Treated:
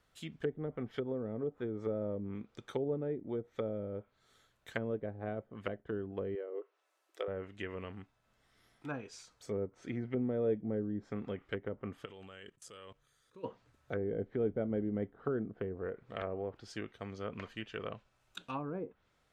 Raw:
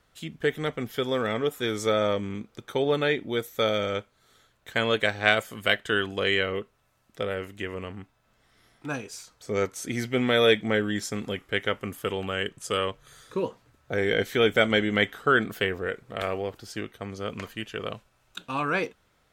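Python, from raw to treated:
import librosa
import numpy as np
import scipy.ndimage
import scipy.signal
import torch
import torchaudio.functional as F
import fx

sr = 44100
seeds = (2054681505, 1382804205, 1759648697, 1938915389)

y = fx.level_steps(x, sr, step_db=22, at=(12.04, 13.43), fade=0.02)
y = fx.env_lowpass_down(y, sr, base_hz=430.0, full_db=-23.5)
y = fx.brickwall_highpass(y, sr, low_hz=300.0, at=(6.35, 7.28))
y = y * librosa.db_to_amplitude(-7.5)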